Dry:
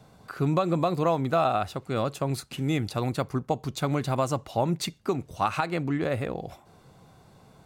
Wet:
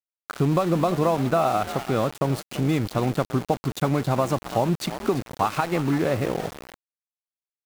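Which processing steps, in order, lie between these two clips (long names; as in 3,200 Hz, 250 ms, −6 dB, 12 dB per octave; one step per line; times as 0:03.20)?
low-shelf EQ 70 Hz −7 dB
on a send: echo with shifted repeats 336 ms, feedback 38%, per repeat +51 Hz, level −15.5 dB
on the sum: downward compressor 2 to 1, threshold −29 dBFS, peak gain reduction 6 dB
high-shelf EQ 2,200 Hz −8 dB
centre clipping without the shift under −38.5 dBFS
level +8.5 dB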